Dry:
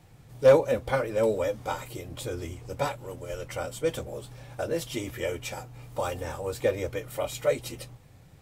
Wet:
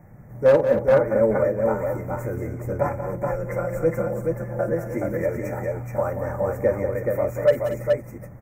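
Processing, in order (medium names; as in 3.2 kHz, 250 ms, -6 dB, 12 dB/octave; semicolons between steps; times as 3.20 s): elliptic band-stop 2–5.9 kHz, stop band 60 dB; high-order bell 7.2 kHz -14 dB; 2.84–4.75 s: comb 5.8 ms, depth 85%; in parallel at -1 dB: compression 4:1, threshold -37 dBFS, peak gain reduction 19.5 dB; on the sum: small resonant body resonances 200/590 Hz, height 9 dB, ringing for 60 ms; overload inside the chain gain 9.5 dB; on a send: multi-tap echo 50/182/232/424 ms -14.5/-10/-13.5/-3.5 dB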